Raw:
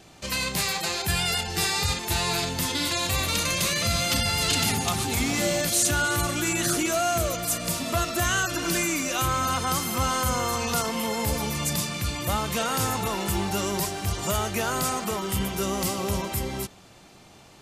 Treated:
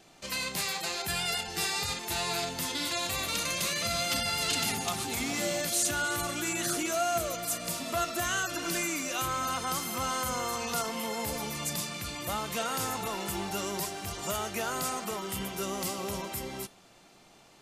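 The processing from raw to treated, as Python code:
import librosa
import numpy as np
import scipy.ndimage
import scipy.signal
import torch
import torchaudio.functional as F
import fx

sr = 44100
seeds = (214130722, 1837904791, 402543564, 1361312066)

y = fx.peak_eq(x, sr, hz=72.0, db=-10.5, octaves=1.8)
y = fx.comb_fb(y, sr, f0_hz=690.0, decay_s=0.2, harmonics='all', damping=0.0, mix_pct=50)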